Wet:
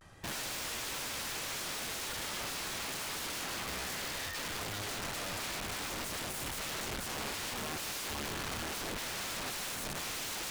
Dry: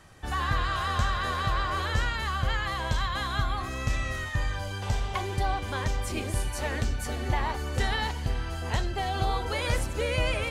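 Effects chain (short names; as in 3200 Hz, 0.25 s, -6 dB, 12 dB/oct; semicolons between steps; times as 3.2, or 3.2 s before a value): vibrato 0.68 Hz 77 cents; wrapped overs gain 30.5 dB; Doppler distortion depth 0.16 ms; gain -3 dB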